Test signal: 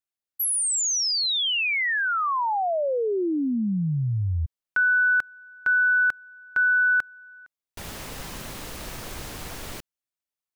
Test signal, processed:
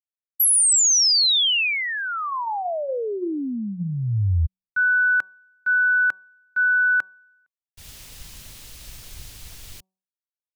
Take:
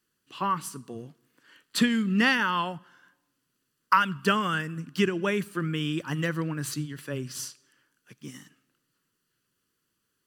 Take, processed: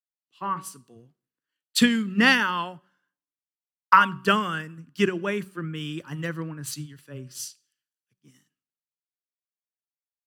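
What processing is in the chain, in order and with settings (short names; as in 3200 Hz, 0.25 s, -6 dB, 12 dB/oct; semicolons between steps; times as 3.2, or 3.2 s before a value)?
de-hum 188.3 Hz, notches 6; three-band expander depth 100%; gain -1.5 dB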